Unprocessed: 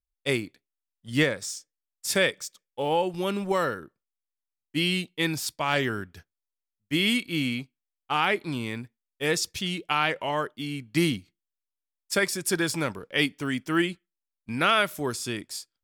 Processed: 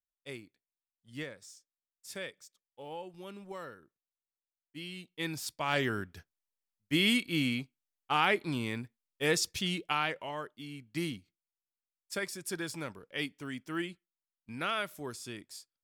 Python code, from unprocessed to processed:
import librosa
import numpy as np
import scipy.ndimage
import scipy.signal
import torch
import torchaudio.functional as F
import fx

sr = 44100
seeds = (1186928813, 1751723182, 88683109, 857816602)

y = fx.gain(x, sr, db=fx.line((4.95, -18.0), (5.21, -10.0), (5.99, -3.0), (9.75, -3.0), (10.34, -11.5)))